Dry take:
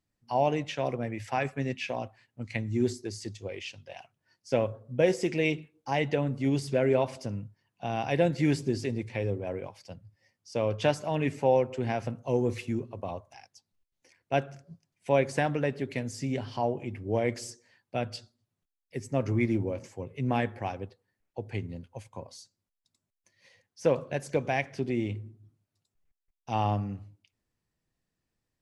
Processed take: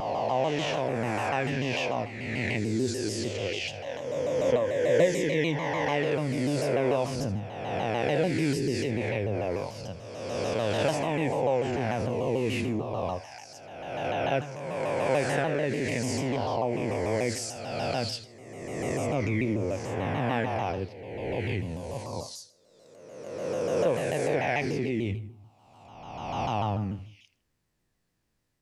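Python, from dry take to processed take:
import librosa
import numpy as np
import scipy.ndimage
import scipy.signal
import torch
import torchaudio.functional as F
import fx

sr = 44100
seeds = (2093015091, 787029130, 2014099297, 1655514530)

p1 = fx.spec_swells(x, sr, rise_s=1.53)
p2 = fx.ripple_eq(p1, sr, per_octave=1.1, db=10, at=(3.84, 5.89))
p3 = fx.over_compress(p2, sr, threshold_db=-32.0, ratio=-1.0)
p4 = p2 + (p3 * 10.0 ** (-2.5 / 20.0))
p5 = fx.echo_thinned(p4, sr, ms=79, feedback_pct=28, hz=420.0, wet_db=-15.0)
p6 = fx.vibrato_shape(p5, sr, shape='saw_down', rate_hz=6.8, depth_cents=160.0)
y = p6 * 10.0 ** (-4.5 / 20.0)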